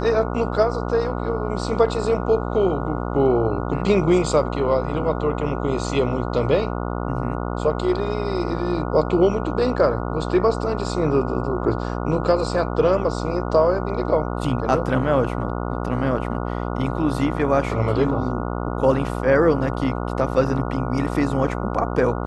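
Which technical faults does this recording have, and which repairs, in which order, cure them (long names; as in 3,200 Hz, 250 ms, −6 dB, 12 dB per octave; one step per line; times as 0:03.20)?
mains buzz 60 Hz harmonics 24 −26 dBFS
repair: hum removal 60 Hz, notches 24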